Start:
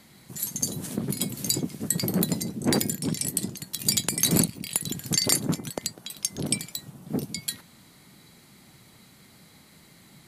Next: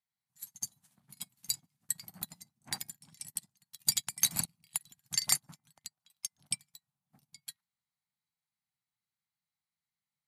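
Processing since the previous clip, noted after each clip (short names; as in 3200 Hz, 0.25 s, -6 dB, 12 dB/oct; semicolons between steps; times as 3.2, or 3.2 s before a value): EQ curve 150 Hz 0 dB, 450 Hz -19 dB, 770 Hz +6 dB; on a send at -23.5 dB: reverb RT60 0.30 s, pre-delay 0.139 s; on the sum: upward expander 2.5:1, over -38 dBFS; gain -8 dB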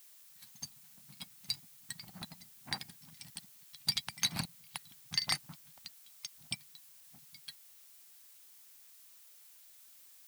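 polynomial smoothing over 15 samples; added noise blue -61 dBFS; gain +2.5 dB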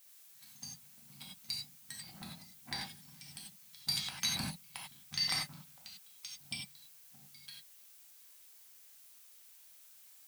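non-linear reverb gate 0.12 s flat, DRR -3 dB; gain -5 dB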